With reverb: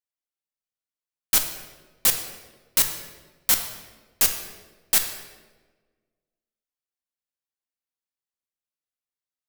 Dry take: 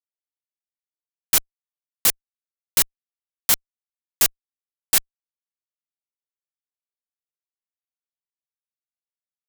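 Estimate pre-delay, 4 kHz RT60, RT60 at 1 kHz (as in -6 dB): 4 ms, 0.90 s, 1.1 s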